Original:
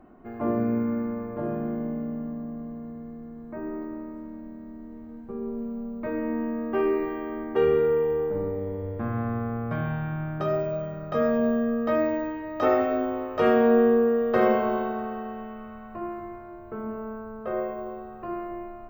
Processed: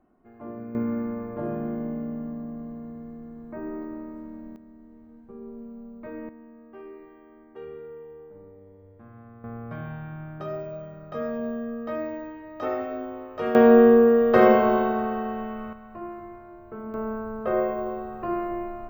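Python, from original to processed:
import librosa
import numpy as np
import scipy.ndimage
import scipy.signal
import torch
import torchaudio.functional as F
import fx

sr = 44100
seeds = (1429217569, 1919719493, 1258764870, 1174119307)

y = fx.gain(x, sr, db=fx.steps((0.0, -12.5), (0.75, -0.5), (4.56, -8.0), (6.29, -19.0), (9.44, -7.0), (13.55, 5.0), (15.73, -3.0), (16.94, 5.0)))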